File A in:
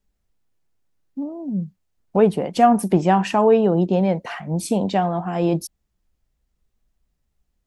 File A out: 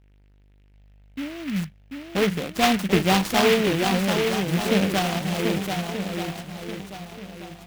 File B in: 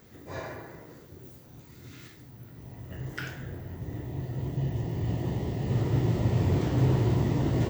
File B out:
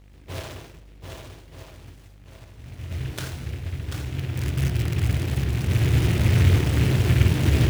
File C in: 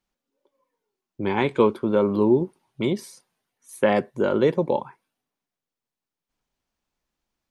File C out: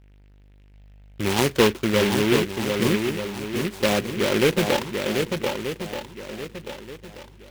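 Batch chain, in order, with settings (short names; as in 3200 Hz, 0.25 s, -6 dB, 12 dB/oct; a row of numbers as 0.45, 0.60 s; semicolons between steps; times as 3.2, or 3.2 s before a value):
rattling part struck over -28 dBFS, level -27 dBFS; gate -44 dBFS, range -11 dB; bell 77 Hz +14.5 dB 0.63 oct; tremolo 0.64 Hz, depth 36%; buzz 50 Hz, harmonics 19, -53 dBFS -8 dB/oct; in parallel at -6 dB: one-sided clip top -21.5 dBFS; on the sum: sample-and-hold 6×; on a send: swung echo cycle 1.231 s, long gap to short 1.5:1, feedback 31%, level -5 dB; on the sum: noise-modulated delay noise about 2100 Hz, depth 0.15 ms; match loudness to -23 LUFS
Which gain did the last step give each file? -6.0, -1.0, -2.0 dB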